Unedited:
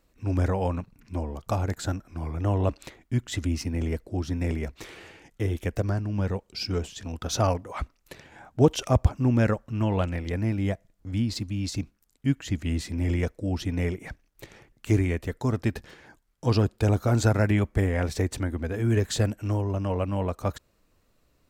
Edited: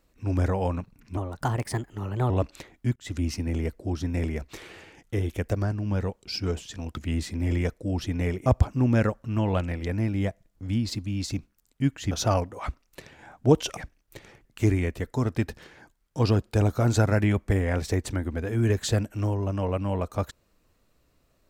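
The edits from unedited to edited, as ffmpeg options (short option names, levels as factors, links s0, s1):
-filter_complex "[0:a]asplit=8[s0][s1][s2][s3][s4][s5][s6][s7];[s0]atrim=end=1.174[s8];[s1]atrim=start=1.17:end=2.57,asetpts=PTS-STARTPTS,asetrate=54684,aresample=44100,atrim=end_sample=49790,asetpts=PTS-STARTPTS[s9];[s2]atrim=start=2.566:end=3.23,asetpts=PTS-STARTPTS,afade=t=out:st=0.66:d=0.004:c=hsin[s10];[s3]atrim=start=3.23:end=7.242,asetpts=PTS-STARTPTS,afade=t=in:d=0.34:c=qsin[s11];[s4]atrim=start=12.548:end=14.042[s12];[s5]atrim=start=8.898:end=12.552[s13];[s6]atrim=start=7.238:end=8.902[s14];[s7]atrim=start=14.038[s15];[s8][s9]acrossfade=d=0.004:c1=hsin:c2=hsin[s16];[s10][s11]concat=n=2:v=0:a=1[s17];[s16][s17]acrossfade=d=0.004:c1=hsin:c2=hsin[s18];[s18][s12]acrossfade=d=0.004:c1=hsin:c2=hsin[s19];[s19][s13]acrossfade=d=0.004:c1=hsin:c2=hsin[s20];[s20][s14]acrossfade=d=0.004:c1=hsin:c2=hsin[s21];[s21][s15]acrossfade=d=0.004:c1=hsin:c2=hsin"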